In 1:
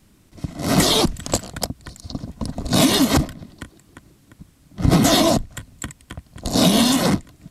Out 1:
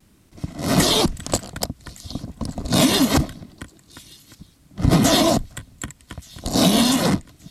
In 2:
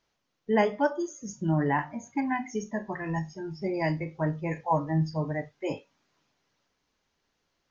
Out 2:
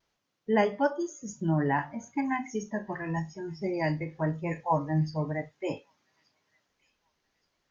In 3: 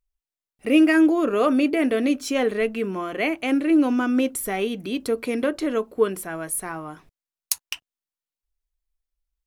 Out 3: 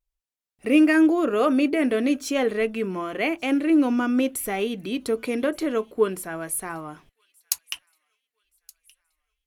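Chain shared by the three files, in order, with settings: added harmonics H 3 -30 dB, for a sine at -1 dBFS; thin delay 1.174 s, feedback 40%, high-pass 2900 Hz, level -23 dB; vibrato 0.95 Hz 35 cents

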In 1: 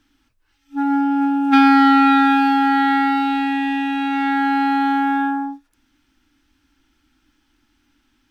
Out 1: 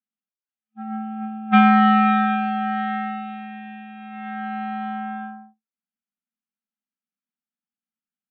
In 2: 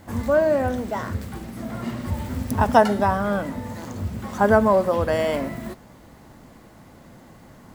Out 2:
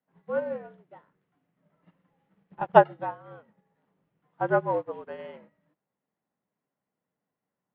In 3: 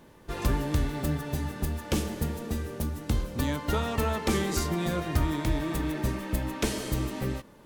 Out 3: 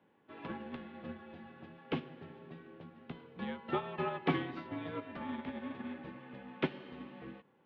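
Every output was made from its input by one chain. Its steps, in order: dynamic EQ 940 Hz, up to +3 dB, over -40 dBFS, Q 6.5; mistuned SSB -62 Hz 230–3300 Hz; upward expander 2.5:1, over -34 dBFS

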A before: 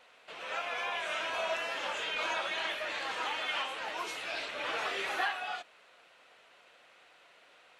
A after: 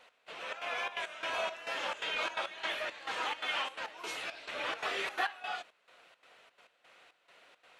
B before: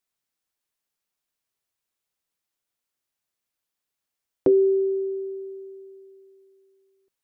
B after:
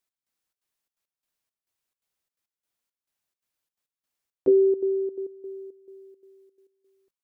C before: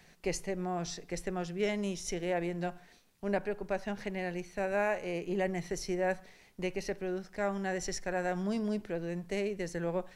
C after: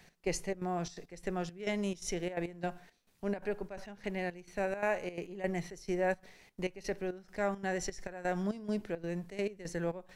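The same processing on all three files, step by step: step gate "x..xxx.xxx.x..xx" 171 bpm -12 dB

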